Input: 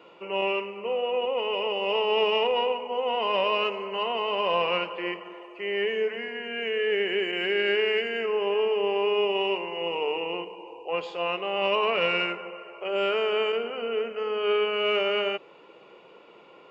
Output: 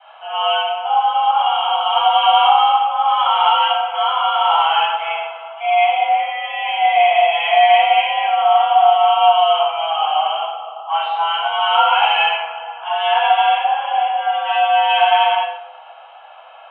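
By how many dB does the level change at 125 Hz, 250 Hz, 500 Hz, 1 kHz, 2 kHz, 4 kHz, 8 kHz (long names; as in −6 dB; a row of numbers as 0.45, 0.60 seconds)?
below −40 dB, below −40 dB, +3.5 dB, +19.5 dB, +8.0 dB, +10.5 dB, can't be measured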